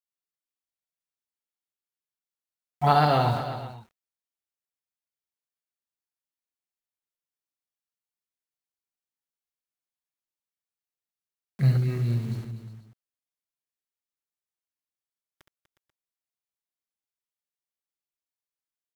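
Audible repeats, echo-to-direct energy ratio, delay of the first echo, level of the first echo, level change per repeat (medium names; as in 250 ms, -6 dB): 4, -5.5 dB, 67 ms, -8.0 dB, no regular repeats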